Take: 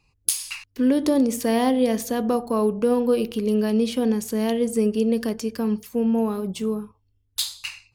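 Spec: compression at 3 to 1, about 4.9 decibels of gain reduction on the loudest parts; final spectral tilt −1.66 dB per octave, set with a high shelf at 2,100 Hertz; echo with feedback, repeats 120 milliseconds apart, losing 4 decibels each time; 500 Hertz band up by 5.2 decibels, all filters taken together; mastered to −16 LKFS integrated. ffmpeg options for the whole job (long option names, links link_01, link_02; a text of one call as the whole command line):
ffmpeg -i in.wav -af "equalizer=frequency=500:width_type=o:gain=6,highshelf=frequency=2100:gain=-6,acompressor=threshold=-18dB:ratio=3,aecho=1:1:120|240|360|480|600|720|840|960|1080:0.631|0.398|0.25|0.158|0.0994|0.0626|0.0394|0.0249|0.0157,volume=5dB" out.wav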